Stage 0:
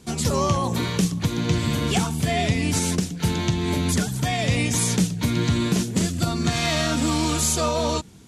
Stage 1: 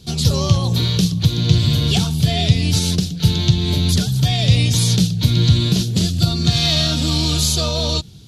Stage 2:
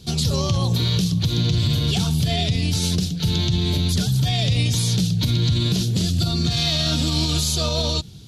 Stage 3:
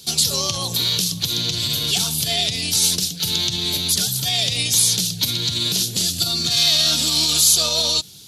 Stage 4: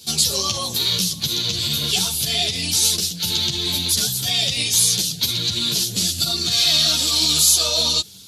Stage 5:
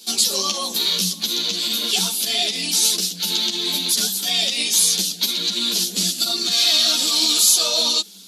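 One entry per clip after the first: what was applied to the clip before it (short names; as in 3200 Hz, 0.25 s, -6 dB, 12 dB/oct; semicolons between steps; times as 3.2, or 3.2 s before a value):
graphic EQ 125/250/500/1000/2000/4000/8000 Hz +6/-9/-4/-10/-11/+10/-10 dB; gain +7 dB
limiter -12 dBFS, peak gain reduction 10.5 dB
RIAA curve recording
ensemble effect; gain +3 dB
Chebyshev high-pass 180 Hz, order 8; gain +1 dB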